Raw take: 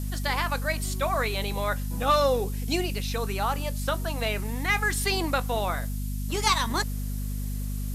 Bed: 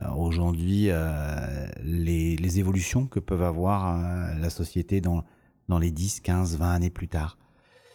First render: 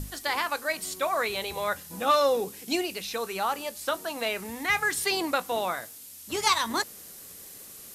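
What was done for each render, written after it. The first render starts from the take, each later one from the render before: notches 50/100/150/200/250 Hz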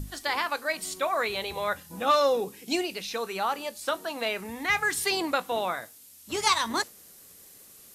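noise print and reduce 6 dB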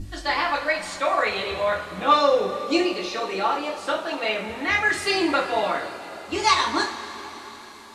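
air absorption 84 m; two-slope reverb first 0.32 s, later 4.6 s, from -19 dB, DRR -5 dB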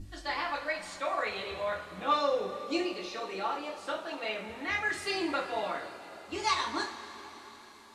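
gain -10 dB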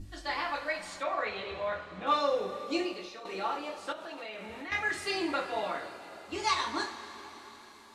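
1.03–2.07 air absorption 100 m; 2.67–3.25 fade out equal-power, to -11 dB; 3.92–4.72 compressor, threshold -38 dBFS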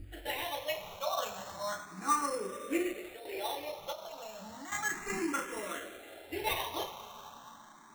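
sample-rate reducer 4800 Hz, jitter 0%; endless phaser +0.33 Hz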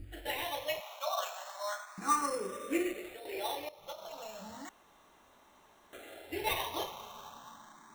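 0.8–1.98 Chebyshev high-pass 610 Hz, order 4; 3.69–4.12 fade in, from -17.5 dB; 4.69–5.93 room tone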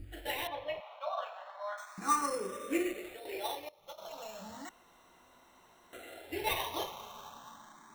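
0.47–1.78 air absorption 400 m; 3.37–3.98 upward expander, over -50 dBFS; 4.65–6.21 ripple EQ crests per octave 2, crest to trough 7 dB

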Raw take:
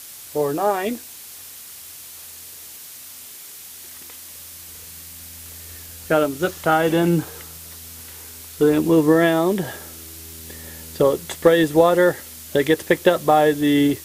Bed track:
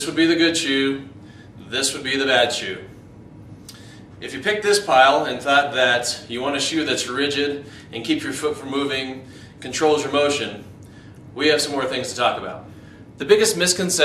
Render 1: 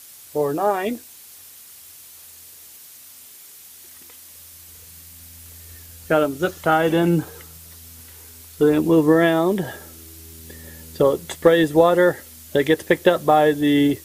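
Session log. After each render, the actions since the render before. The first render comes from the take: denoiser 6 dB, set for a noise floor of -39 dBFS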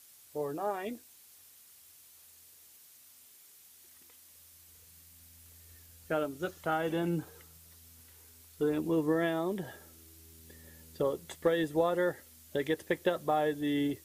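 gain -14 dB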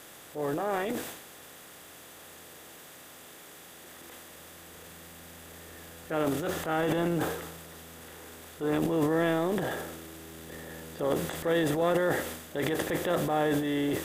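per-bin compression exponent 0.6; transient shaper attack -7 dB, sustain +10 dB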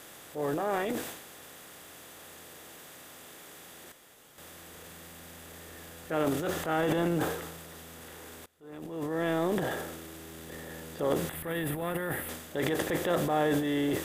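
3.92–4.38 room tone; 8.46–9.44 fade in quadratic, from -23.5 dB; 11.29–12.29 EQ curve 120 Hz 0 dB, 530 Hz -10 dB, 750 Hz -7 dB, 2500 Hz -2 dB, 6500 Hz -15 dB, 10000 Hz +4 dB

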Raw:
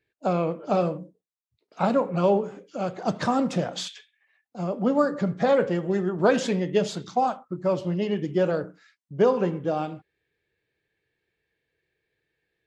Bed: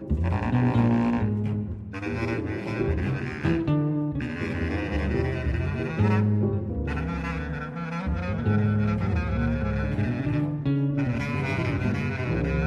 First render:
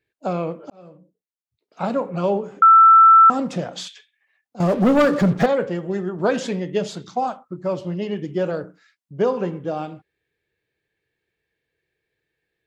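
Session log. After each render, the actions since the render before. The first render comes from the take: 0.7–2.02 fade in linear; 2.62–3.3 bleep 1330 Hz -6.5 dBFS; 4.6–5.46 sample leveller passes 3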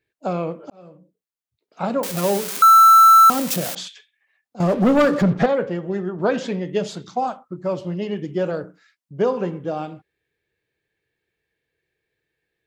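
2.03–3.75 switching spikes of -13.5 dBFS; 5.22–6.65 air absorption 74 m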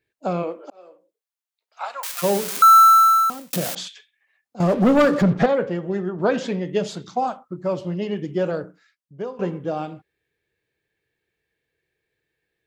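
0.42–2.22 HPF 260 Hz -> 1100 Hz 24 dB/oct; 2.77–3.53 fade out; 8.57–9.39 fade out, to -16.5 dB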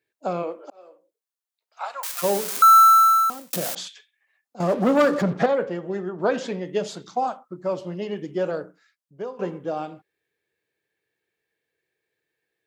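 HPF 340 Hz 6 dB/oct; bell 2700 Hz -3 dB 1.7 oct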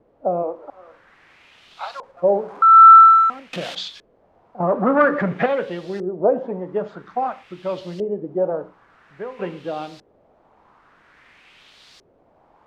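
requantised 8-bit, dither triangular; LFO low-pass saw up 0.5 Hz 460–4700 Hz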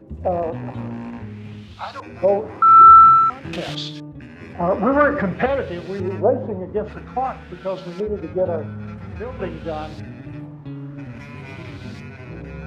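add bed -8.5 dB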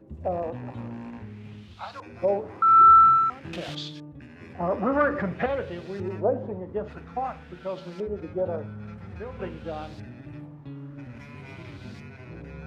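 gain -7 dB

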